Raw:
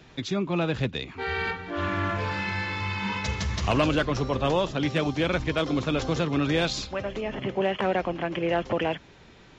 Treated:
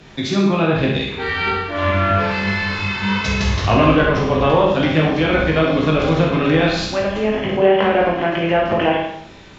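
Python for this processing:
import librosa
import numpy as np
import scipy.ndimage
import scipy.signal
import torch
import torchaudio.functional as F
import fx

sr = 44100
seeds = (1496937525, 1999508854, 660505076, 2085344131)

y = fx.room_early_taps(x, sr, ms=(19, 65), db=(-4.5, -6.0))
y = fx.env_lowpass_down(y, sr, base_hz=2400.0, full_db=-18.5)
y = fx.rev_schroeder(y, sr, rt60_s=0.69, comb_ms=30, drr_db=1.0)
y = y * 10.0 ** (6.5 / 20.0)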